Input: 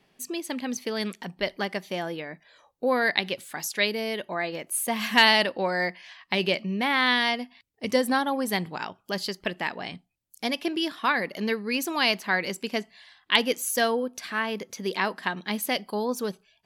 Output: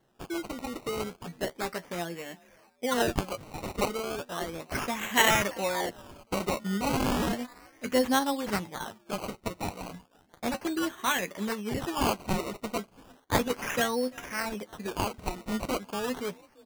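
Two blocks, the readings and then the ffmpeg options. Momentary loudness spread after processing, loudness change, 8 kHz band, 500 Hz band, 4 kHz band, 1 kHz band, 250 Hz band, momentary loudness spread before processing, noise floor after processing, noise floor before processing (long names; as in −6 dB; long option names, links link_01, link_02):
11 LU, −4.5 dB, −1.5 dB, −3.0 dB, −8.0 dB, −3.0 dB, −2.0 dB, 11 LU, −63 dBFS, −68 dBFS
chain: -filter_complex "[0:a]asplit=3[link_01][link_02][link_03];[link_02]adelay=340,afreqshift=37,volume=-24dB[link_04];[link_03]adelay=680,afreqshift=74,volume=-34.2dB[link_05];[link_01][link_04][link_05]amix=inputs=3:normalize=0,flanger=delay=8.5:depth=4.1:regen=34:speed=0.33:shape=sinusoidal,acrusher=samples=18:mix=1:aa=0.000001:lfo=1:lforange=18:lforate=0.34"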